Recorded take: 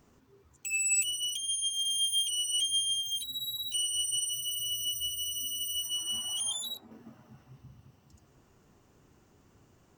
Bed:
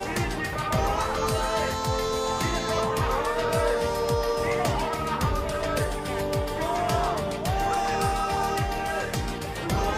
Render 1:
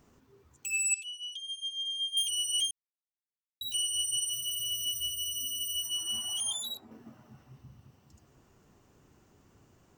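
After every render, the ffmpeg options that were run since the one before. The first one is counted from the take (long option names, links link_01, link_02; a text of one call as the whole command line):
ffmpeg -i in.wav -filter_complex "[0:a]asettb=1/sr,asplit=3[link_01][link_02][link_03];[link_01]atrim=end=0.944[link_04];[link_02]atrim=start=0.94:end=2.17,asetpts=PTS-STARTPTS,afade=type=in:duration=0.004:curve=qsin,afade=type=out:start_time=1.226:duration=0.004:curve=qsin,bandpass=frequency=3600:width_type=q:width=4.1[link_05];[link_03]atrim=start=2.166[link_06];[link_04][link_05]acrossfade=duration=0.004:curve1=hsin:curve2=qsin[link_07];[link_07][link_06]acrossfade=duration=0.004:curve1=qsin:curve2=hsin,asettb=1/sr,asplit=3[link_08][link_09][link_10];[link_08]atrim=end=4.274[link_11];[link_09]atrim=start=4.27:end=5.11,asetpts=PTS-STARTPTS,afade=type=in:duration=0.004:curve=qsin,afade=type=out:start_time=0.836:duration=0.004:curve=qsin,acrusher=bits=6:mode=log:mix=0:aa=0.000001[link_12];[link_10]atrim=start=5.106[link_13];[link_11][link_12]acrossfade=duration=0.004:curve1=hsin:curve2=qsin[link_14];[link_14][link_13]acrossfade=duration=0.004:curve1=qsin:curve2=hsin,asplit=3[link_15][link_16][link_17];[link_15]atrim=end=2.71,asetpts=PTS-STARTPTS,afade=type=out:start_time=2.706:duration=0.004:curve=hsin[link_18];[link_16]atrim=start=2.71:end=3.61,asetpts=PTS-STARTPTS,volume=0[link_19];[link_17]atrim=start=3.61,asetpts=PTS-STARTPTS,afade=type=in:duration=0.004:curve=hsin[link_20];[link_18][link_19][link_20]concat=n=3:v=0:a=1" out.wav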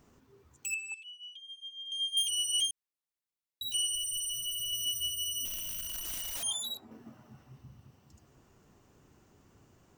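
ffmpeg -i in.wav -filter_complex "[0:a]asettb=1/sr,asplit=3[link_01][link_02][link_03];[link_01]atrim=end=0.744[link_04];[link_02]atrim=start=0.74:end=1.92,asetpts=PTS-STARTPTS,afade=type=in:duration=0.004:curve=qsin,afade=type=out:start_time=1.176:duration=0.004:curve=qsin,acrossover=split=250 2700:gain=0.126 1 0.0891[link_05][link_06][link_07];[link_05][link_06][link_07]amix=inputs=3:normalize=0[link_08];[link_03]atrim=start=1.916[link_09];[link_04][link_08]acrossfade=duration=0.004:curve1=hsin:curve2=qsin[link_10];[link_10][link_09]acrossfade=duration=0.004:curve1=qsin:curve2=hsin,asettb=1/sr,asplit=3[link_11][link_12][link_13];[link_11]atrim=end=3.954[link_14];[link_12]atrim=start=3.95:end=4.73,asetpts=PTS-STARTPTS,afade=type=in:duration=0.004:curve=qsin,afade=type=out:start_time=0.776:duration=0.004:curve=qsin,asoftclip=type=hard:threshold=-32.5dB[link_15];[link_13]atrim=start=4.726[link_16];[link_14][link_15]acrossfade=duration=0.004:curve1=hsin:curve2=qsin[link_17];[link_17][link_16]acrossfade=duration=0.004:curve1=qsin:curve2=hsin,asettb=1/sr,asplit=3[link_18][link_19][link_20];[link_18]atrim=end=5.454[link_21];[link_19]atrim=start=5.45:end=6.43,asetpts=PTS-STARTPTS,afade=type=in:duration=0.004:curve=qsin,afade=type=out:start_time=0.976:duration=0.004:curve=qsin,aeval=exprs='(mod(47.3*val(0)+1,2)-1)/47.3':channel_layout=same[link_22];[link_20]atrim=start=6.426[link_23];[link_21][link_22]acrossfade=duration=0.004:curve1=hsin:curve2=qsin[link_24];[link_24][link_23]acrossfade=duration=0.004:curve1=qsin:curve2=hsin" out.wav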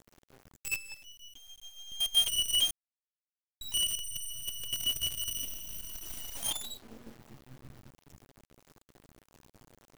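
ffmpeg -i in.wav -filter_complex "[0:a]asplit=2[link_01][link_02];[link_02]adynamicsmooth=sensitivity=6.5:basefreq=560,volume=-1dB[link_03];[link_01][link_03]amix=inputs=2:normalize=0,acrusher=bits=6:dc=4:mix=0:aa=0.000001" out.wav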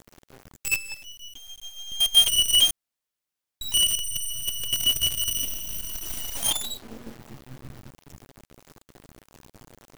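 ffmpeg -i in.wav -af "volume=9dB" out.wav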